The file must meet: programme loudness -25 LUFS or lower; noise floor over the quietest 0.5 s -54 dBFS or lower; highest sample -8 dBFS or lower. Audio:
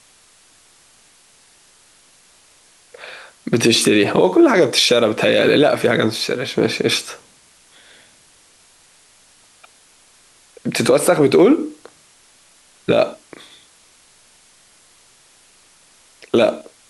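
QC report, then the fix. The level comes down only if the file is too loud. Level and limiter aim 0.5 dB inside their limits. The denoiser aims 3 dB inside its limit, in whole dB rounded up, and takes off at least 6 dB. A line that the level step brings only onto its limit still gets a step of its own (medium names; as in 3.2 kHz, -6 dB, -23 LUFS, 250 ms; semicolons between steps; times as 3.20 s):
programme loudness -15.5 LUFS: fail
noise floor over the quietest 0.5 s -52 dBFS: fail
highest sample -3.5 dBFS: fail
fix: trim -10 dB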